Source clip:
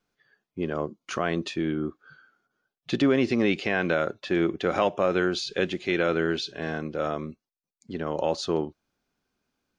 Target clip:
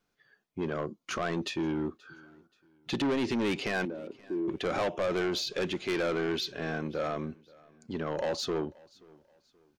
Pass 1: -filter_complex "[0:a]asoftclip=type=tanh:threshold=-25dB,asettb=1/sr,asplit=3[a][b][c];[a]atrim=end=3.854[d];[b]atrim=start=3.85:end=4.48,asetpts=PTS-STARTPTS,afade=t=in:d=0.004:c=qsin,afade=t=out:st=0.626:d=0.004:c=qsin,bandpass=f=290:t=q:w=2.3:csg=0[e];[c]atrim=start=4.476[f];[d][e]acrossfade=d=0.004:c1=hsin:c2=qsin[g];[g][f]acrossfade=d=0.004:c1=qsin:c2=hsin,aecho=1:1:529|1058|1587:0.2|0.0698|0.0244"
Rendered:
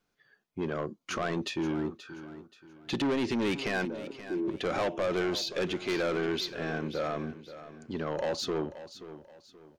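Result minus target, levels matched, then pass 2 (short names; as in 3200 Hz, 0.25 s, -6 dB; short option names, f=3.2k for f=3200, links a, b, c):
echo-to-direct +11 dB
-filter_complex "[0:a]asoftclip=type=tanh:threshold=-25dB,asettb=1/sr,asplit=3[a][b][c];[a]atrim=end=3.854[d];[b]atrim=start=3.85:end=4.48,asetpts=PTS-STARTPTS,afade=t=in:d=0.004:c=qsin,afade=t=out:st=0.626:d=0.004:c=qsin,bandpass=f=290:t=q:w=2.3:csg=0[e];[c]atrim=start=4.476[f];[d][e]acrossfade=d=0.004:c1=hsin:c2=qsin[g];[g][f]acrossfade=d=0.004:c1=qsin:c2=hsin,aecho=1:1:529|1058:0.0562|0.0197"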